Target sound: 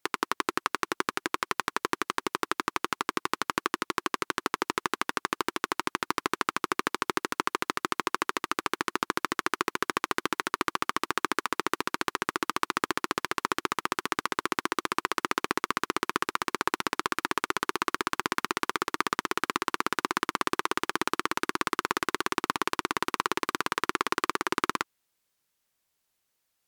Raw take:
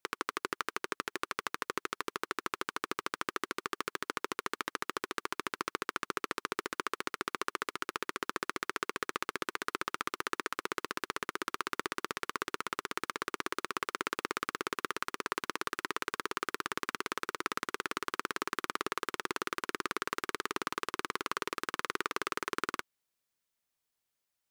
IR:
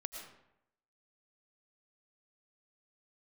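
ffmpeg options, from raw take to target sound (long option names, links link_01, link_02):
-af "asetrate=40517,aresample=44100,volume=7dB"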